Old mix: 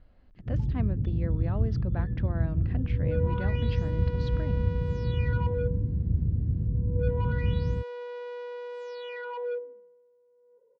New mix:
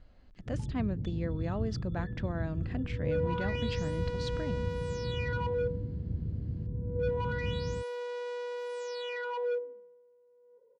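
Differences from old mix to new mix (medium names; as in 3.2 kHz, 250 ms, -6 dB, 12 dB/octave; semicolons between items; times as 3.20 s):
first sound: add tilt EQ +2.5 dB/octave; master: remove distance through air 190 m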